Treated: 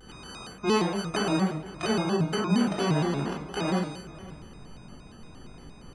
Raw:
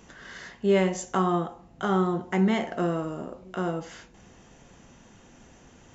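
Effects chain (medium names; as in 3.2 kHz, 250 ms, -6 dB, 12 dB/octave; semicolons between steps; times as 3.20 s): sorted samples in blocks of 32 samples; compression 2.5:1, threshold -29 dBFS, peak gain reduction 8 dB; delay 517 ms -18.5 dB; spectral gate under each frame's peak -25 dB strong; resampled via 22.05 kHz; simulated room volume 930 m³, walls furnished, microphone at 3.6 m; vibrato with a chosen wave square 4.3 Hz, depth 160 cents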